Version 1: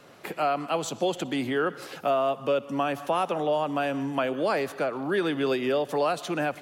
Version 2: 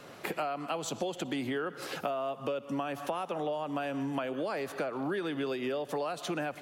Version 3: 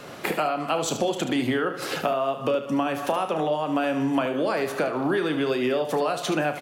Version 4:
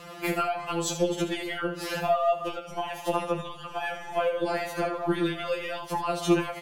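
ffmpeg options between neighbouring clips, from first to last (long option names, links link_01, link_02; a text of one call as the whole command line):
ffmpeg -i in.wav -af "acompressor=threshold=-33dB:ratio=10,volume=2.5dB" out.wav
ffmpeg -i in.wav -af "aecho=1:1:32|74:0.299|0.335,volume=8.5dB" out.wav
ffmpeg -i in.wav -af "aeval=exprs='0.355*(cos(1*acos(clip(val(0)/0.355,-1,1)))-cos(1*PI/2))+0.01*(cos(4*acos(clip(val(0)/0.355,-1,1)))-cos(4*PI/2))':channel_layout=same,afftfilt=real='re*2.83*eq(mod(b,8),0)':imag='im*2.83*eq(mod(b,8),0)':win_size=2048:overlap=0.75" out.wav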